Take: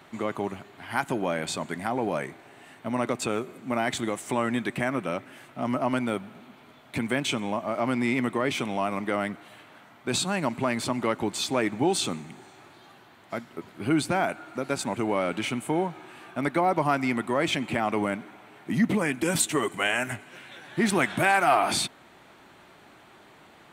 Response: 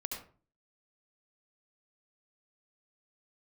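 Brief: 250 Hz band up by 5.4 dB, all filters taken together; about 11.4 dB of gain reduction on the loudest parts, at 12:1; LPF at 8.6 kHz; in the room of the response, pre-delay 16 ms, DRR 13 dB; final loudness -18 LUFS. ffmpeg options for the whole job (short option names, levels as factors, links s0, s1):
-filter_complex "[0:a]lowpass=8600,equalizer=f=250:t=o:g=6.5,acompressor=threshold=0.0708:ratio=12,asplit=2[s0][s1];[1:a]atrim=start_sample=2205,adelay=16[s2];[s1][s2]afir=irnorm=-1:irlink=0,volume=0.211[s3];[s0][s3]amix=inputs=2:normalize=0,volume=3.55"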